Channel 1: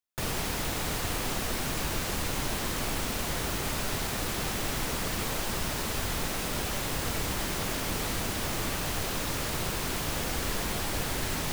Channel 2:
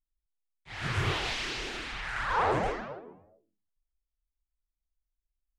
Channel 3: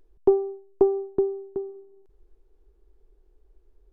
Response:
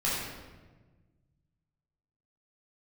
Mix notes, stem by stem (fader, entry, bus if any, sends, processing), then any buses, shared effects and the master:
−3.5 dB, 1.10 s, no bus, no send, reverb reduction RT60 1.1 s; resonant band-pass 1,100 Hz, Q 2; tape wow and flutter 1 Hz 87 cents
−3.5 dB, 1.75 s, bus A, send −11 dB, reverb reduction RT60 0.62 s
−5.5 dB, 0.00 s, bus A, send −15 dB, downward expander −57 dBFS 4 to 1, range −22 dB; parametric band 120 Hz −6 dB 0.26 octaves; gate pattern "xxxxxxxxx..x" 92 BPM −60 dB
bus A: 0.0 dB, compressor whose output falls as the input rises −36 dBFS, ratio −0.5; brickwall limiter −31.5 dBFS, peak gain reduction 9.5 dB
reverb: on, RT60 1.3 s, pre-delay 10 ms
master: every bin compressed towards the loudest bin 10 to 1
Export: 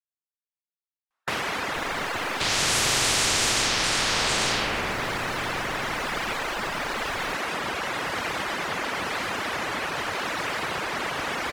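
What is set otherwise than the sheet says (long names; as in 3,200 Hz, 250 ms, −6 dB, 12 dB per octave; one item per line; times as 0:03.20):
stem 2 −3.5 dB → +7.5 dB
stem 3: muted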